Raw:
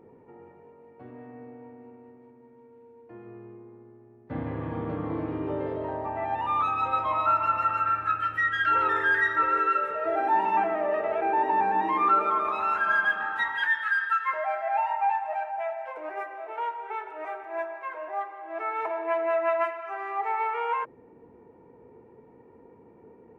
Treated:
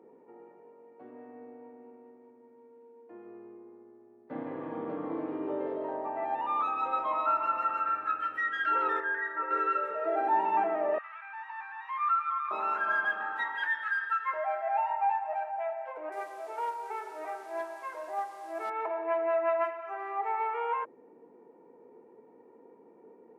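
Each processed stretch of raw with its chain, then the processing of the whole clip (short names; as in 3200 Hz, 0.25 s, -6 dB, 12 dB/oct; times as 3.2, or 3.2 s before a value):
9–9.51 LPF 1700 Hz + low shelf 490 Hz -8 dB + notch 1300 Hz, Q 16
10.98–12.51 steep high-pass 1100 Hz 48 dB/oct + air absorption 100 m
16.12–18.7 delta modulation 64 kbps, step -44.5 dBFS + doubler 49 ms -11 dB
whole clip: Bessel high-pass 320 Hz, order 4; tilt shelf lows +4.5 dB, about 1200 Hz; gain -4 dB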